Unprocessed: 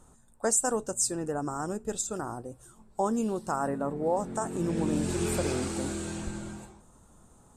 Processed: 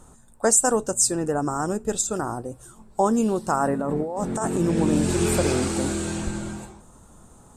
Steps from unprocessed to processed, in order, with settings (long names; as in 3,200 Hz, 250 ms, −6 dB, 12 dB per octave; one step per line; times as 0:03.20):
0:03.79–0:04.58: compressor whose output falls as the input rises −33 dBFS, ratio −1
level +7.5 dB